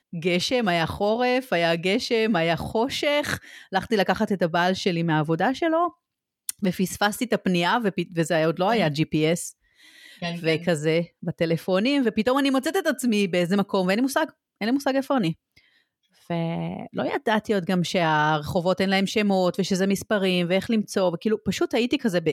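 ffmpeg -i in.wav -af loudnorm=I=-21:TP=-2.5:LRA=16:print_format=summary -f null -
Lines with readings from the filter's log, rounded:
Input Integrated:    -23.6 LUFS
Input True Peak:      -7.2 dBTP
Input LRA:             2.3 LU
Input Threshold:     -33.9 LUFS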